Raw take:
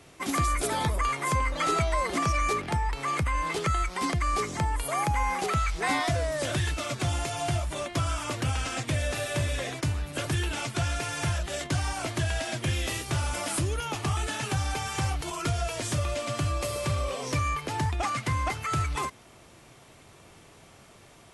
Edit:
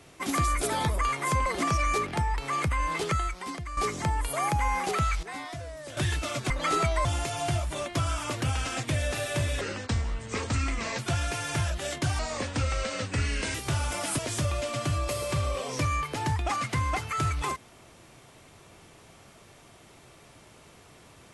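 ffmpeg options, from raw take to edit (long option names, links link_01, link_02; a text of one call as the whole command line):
ffmpeg -i in.wav -filter_complex "[0:a]asplit=12[link_01][link_02][link_03][link_04][link_05][link_06][link_07][link_08][link_09][link_10][link_11][link_12];[link_01]atrim=end=1.462[link_13];[link_02]atrim=start=2.008:end=4.32,asetpts=PTS-STARTPTS,afade=type=out:start_time=1.642:duration=0.67:curve=qua:silence=0.298538[link_14];[link_03]atrim=start=4.32:end=5.782,asetpts=PTS-STARTPTS,afade=type=in:duration=0.004:curve=hsin:silence=0.298538[link_15];[link_04]atrim=start=5.778:end=6.522,asetpts=PTS-STARTPTS,volume=-11.5dB[link_16];[link_05]atrim=start=6.518:end=7.052[link_17];[link_06]atrim=start=1.458:end=2.012[link_18];[link_07]atrim=start=7.048:end=9.614[link_19];[link_08]atrim=start=9.61:end=10.67,asetpts=PTS-STARTPTS,asetrate=33957,aresample=44100,atrim=end_sample=60709,asetpts=PTS-STARTPTS[link_20];[link_09]atrim=start=10.666:end=11.874[link_21];[link_10]atrim=start=11.87:end=12.97,asetpts=PTS-STARTPTS,asetrate=35721,aresample=44100[link_22];[link_11]atrim=start=12.966:end=13.612[link_23];[link_12]atrim=start=15.718[link_24];[link_14][link_15]concat=n=2:v=0:a=1[link_25];[link_13][link_25]acrossfade=duration=0.004:curve1=hsin:curve2=hsin[link_26];[link_26][link_16]acrossfade=duration=0.004:curve1=hsin:curve2=hsin[link_27];[link_27][link_17]acrossfade=duration=0.004:curve1=hsin:curve2=hsin[link_28];[link_28][link_18]acrossfade=duration=0.004:curve1=hsin:curve2=hsin[link_29];[link_29][link_19]acrossfade=duration=0.004:curve1=hsin:curve2=hsin[link_30];[link_30][link_20]acrossfade=duration=0.004:curve1=hsin:curve2=hsin[link_31];[link_31][link_21]acrossfade=duration=0.004:curve1=hsin:curve2=hsin[link_32];[link_32][link_22]acrossfade=duration=0.004:curve1=hsin:curve2=hsin[link_33];[link_33][link_23]acrossfade=duration=0.004:curve1=hsin:curve2=hsin[link_34];[link_34][link_24]acrossfade=duration=0.004:curve1=hsin:curve2=hsin" out.wav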